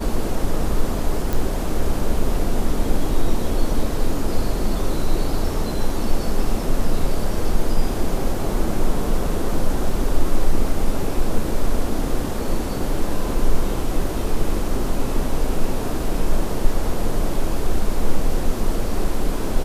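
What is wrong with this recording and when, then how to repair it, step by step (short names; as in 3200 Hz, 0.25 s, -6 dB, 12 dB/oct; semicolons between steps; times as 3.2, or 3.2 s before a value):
1.33 pop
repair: de-click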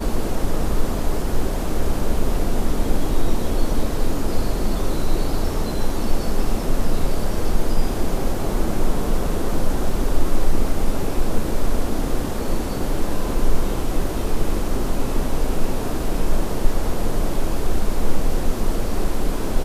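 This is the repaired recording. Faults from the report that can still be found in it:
none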